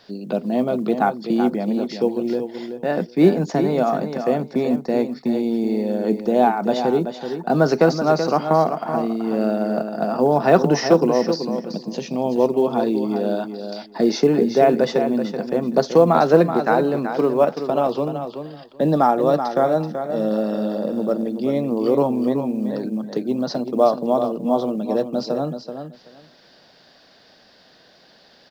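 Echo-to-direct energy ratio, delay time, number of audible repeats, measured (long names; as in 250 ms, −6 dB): −8.5 dB, 380 ms, 2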